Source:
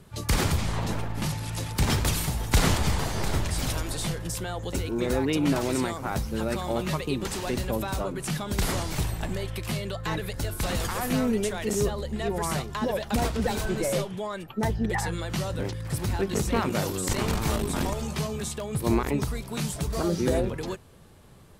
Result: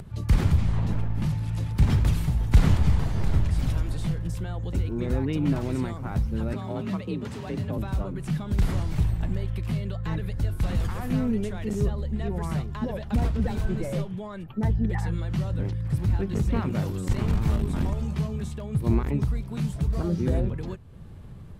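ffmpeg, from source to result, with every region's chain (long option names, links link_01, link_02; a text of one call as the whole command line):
ffmpeg -i in.wav -filter_complex "[0:a]asettb=1/sr,asplit=3[link_01][link_02][link_03];[link_01]atrim=end=6.534[link_04];[link_02]atrim=start=6.53:end=7.78,asetpts=PTS-STARTPTS,afade=type=in:duration=0.004:curve=qsin,afade=type=out:start_time=1.246:duration=0.004:curve=qsin,highpass=frequency=80:poles=1,highshelf=frequency=9500:gain=-7,afreqshift=38[link_05];[link_03]atrim=start=7.776[link_06];[link_04][link_05]acrossfade=duration=0.004:curve1=hsin:curve2=qsin[link_07];[link_07][link_06]acrossfade=duration=0.004:curve1=qsin:curve2=hsin,bass=frequency=250:gain=13,treble=frequency=4000:gain=-8,acompressor=mode=upward:threshold=-27dB:ratio=2.5,volume=-7dB" out.wav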